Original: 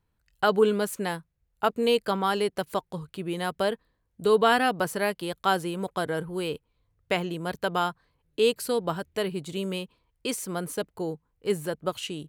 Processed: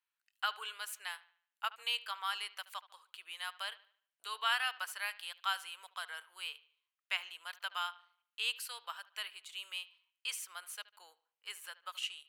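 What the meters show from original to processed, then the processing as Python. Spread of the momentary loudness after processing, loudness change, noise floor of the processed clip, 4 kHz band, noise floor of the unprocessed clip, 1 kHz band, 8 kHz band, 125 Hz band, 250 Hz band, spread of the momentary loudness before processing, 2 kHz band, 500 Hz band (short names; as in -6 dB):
13 LU, -12.0 dB, under -85 dBFS, -3.5 dB, -75 dBFS, -13.0 dB, -8.0 dB, under -40 dB, under -40 dB, 11 LU, -6.5 dB, -33.5 dB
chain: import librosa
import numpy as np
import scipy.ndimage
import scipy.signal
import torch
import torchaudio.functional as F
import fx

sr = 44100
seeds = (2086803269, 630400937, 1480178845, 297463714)

y = scipy.signal.sosfilt(scipy.signal.butter(4, 1100.0, 'highpass', fs=sr, output='sos'), x)
y = fx.peak_eq(y, sr, hz=2800.0, db=6.0, octaves=0.56)
y = fx.echo_bbd(y, sr, ms=74, stages=2048, feedback_pct=39, wet_db=-18.5)
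y = y * 10.0 ** (-8.0 / 20.0)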